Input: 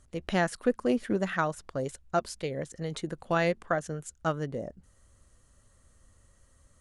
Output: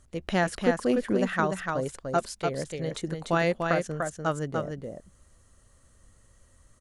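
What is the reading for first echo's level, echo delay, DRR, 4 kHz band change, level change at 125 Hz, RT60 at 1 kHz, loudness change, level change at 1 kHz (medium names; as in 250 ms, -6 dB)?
-4.5 dB, 294 ms, no reverb, +3.0 dB, +3.0 dB, no reverb, +2.5 dB, +3.0 dB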